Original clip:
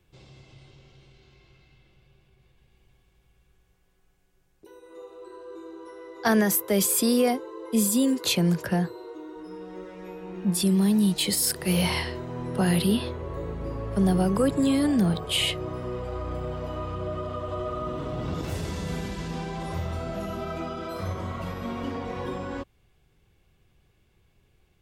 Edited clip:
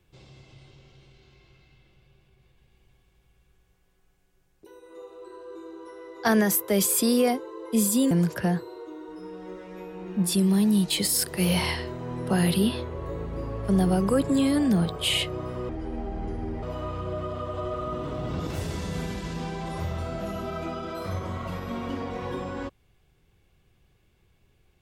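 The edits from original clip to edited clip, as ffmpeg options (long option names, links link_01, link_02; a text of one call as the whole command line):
ffmpeg -i in.wav -filter_complex "[0:a]asplit=4[link_01][link_02][link_03][link_04];[link_01]atrim=end=8.112[link_05];[link_02]atrim=start=8.388:end=15.974[link_06];[link_03]atrim=start=15.97:end=16.57,asetpts=PTS-STARTPTS,asetrate=28224,aresample=44100[link_07];[link_04]atrim=start=16.566[link_08];[link_05][link_06]acrossfade=duration=0.004:curve1=hsin:curve2=hsin[link_09];[link_09][link_07]acrossfade=duration=0.004:curve1=hsin:curve2=hsin[link_10];[link_10][link_08]acrossfade=duration=0.004:curve1=hsin:curve2=hsin" out.wav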